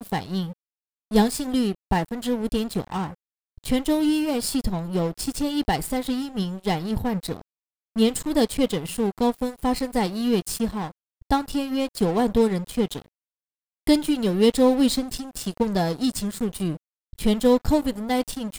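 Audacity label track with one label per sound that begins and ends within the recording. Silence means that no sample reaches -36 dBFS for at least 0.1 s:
1.110000	1.750000	sound
1.910000	3.140000	sound
3.580000	7.410000	sound
7.960000	10.910000	sound
11.220000	13.020000	sound
13.870000	16.770000	sound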